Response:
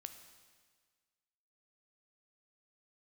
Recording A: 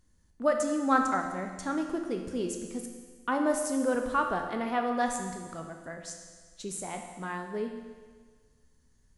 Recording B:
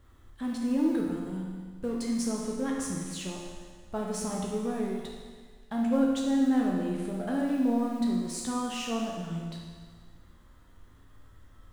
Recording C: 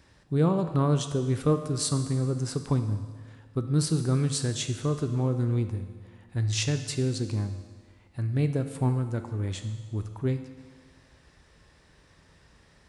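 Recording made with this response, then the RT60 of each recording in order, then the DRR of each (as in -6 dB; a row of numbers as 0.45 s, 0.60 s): C; 1.6 s, 1.6 s, 1.6 s; 3.0 dB, -2.0 dB, 7.5 dB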